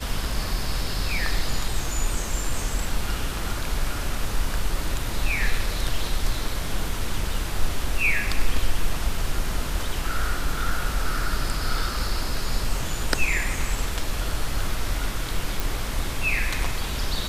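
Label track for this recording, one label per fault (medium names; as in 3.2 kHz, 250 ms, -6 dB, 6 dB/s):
15.600000	15.600000	pop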